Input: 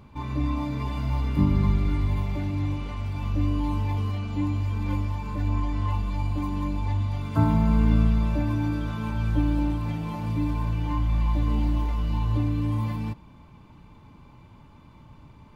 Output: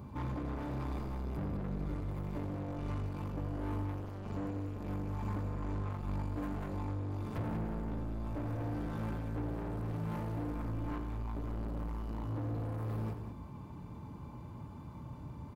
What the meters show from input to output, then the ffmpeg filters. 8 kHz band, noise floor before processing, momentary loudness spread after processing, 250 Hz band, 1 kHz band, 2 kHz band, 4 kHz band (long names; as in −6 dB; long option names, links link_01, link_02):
can't be measured, −51 dBFS, 10 LU, −12.0 dB, −10.5 dB, −11.0 dB, below −15 dB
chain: -af "highpass=frequency=53:width=0.5412,highpass=frequency=53:width=1.3066,equalizer=frequency=2900:width_type=o:width=2:gain=-11.5,acompressor=threshold=-30dB:ratio=4,asoftclip=type=tanh:threshold=-39dB,aecho=1:1:87.46|189.5:0.282|0.355,volume=4dB"